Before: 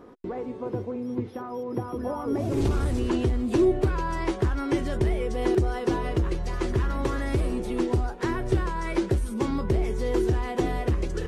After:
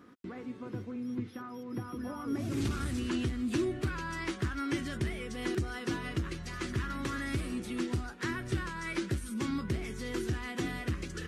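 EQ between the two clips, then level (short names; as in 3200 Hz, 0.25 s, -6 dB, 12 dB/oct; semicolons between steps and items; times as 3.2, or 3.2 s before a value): HPF 83 Hz 12 dB/oct; low shelf 330 Hz -5 dB; band shelf 610 Hz -12 dB; -1.0 dB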